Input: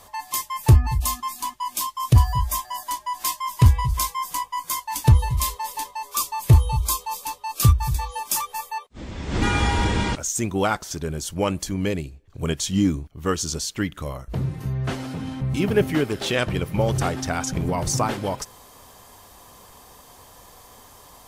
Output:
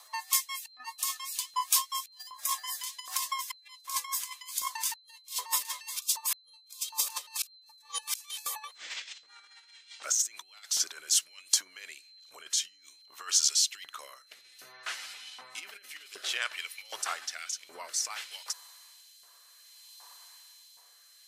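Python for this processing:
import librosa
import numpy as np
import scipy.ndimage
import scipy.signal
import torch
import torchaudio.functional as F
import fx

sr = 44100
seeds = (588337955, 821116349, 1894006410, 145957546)

y = fx.doppler_pass(x, sr, speed_mps=9, closest_m=13.0, pass_at_s=7.48)
y = fx.high_shelf(y, sr, hz=8400.0, db=-5.5)
y = fx.over_compress(y, sr, threshold_db=-38.0, ratio=-0.5)
y = y + 10.0 ** (-63.0 / 20.0) * np.sin(2.0 * np.pi * 4100.0 * np.arange(len(y)) / sr)
y = fx.bass_treble(y, sr, bass_db=-13, treble_db=7)
y = fx.filter_lfo_highpass(y, sr, shape='saw_up', hz=1.3, low_hz=970.0, high_hz=3300.0, q=1.3)
y = fx.rotary_switch(y, sr, hz=5.0, then_hz=0.6, switch_at_s=11.47)
y = y * 10.0 ** (4.5 / 20.0)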